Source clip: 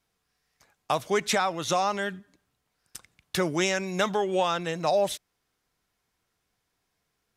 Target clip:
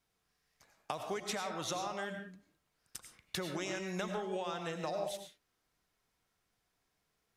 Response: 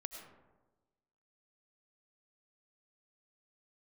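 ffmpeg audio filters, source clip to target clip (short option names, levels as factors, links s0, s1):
-filter_complex "[0:a]acompressor=threshold=0.0282:ratio=12[s0];[1:a]atrim=start_sample=2205,afade=t=out:st=0.26:d=0.01,atrim=end_sample=11907[s1];[s0][s1]afir=irnorm=-1:irlink=0"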